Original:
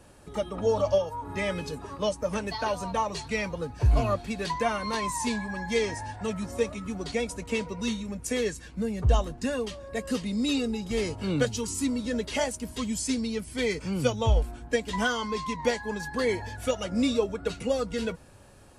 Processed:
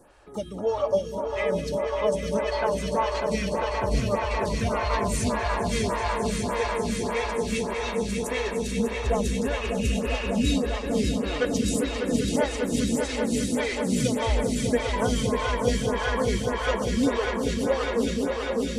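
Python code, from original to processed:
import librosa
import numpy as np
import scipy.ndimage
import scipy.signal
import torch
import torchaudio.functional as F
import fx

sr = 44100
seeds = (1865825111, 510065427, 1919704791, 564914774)

y = fx.echo_swell(x, sr, ms=199, loudest=5, wet_db=-6.5)
y = fx.spec_repair(y, sr, seeds[0], start_s=9.64, length_s=0.85, low_hz=890.0, high_hz=3100.0, source='after')
y = fx.stagger_phaser(y, sr, hz=1.7)
y = y * 10.0 ** (2.0 / 20.0)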